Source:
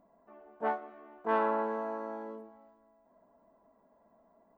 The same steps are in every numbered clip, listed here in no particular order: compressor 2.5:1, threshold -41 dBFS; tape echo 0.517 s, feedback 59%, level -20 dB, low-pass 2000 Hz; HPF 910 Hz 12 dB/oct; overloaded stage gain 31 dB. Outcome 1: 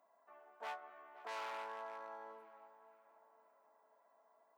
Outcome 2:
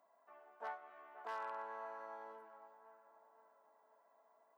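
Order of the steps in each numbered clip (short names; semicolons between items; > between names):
overloaded stage > tape echo > compressor > HPF; tape echo > compressor > overloaded stage > HPF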